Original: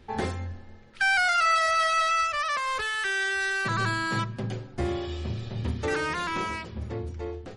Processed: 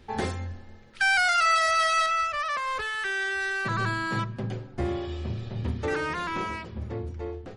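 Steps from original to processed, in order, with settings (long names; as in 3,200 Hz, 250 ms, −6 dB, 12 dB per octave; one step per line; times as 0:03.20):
high-shelf EQ 3,400 Hz +3 dB, from 0:02.06 −7 dB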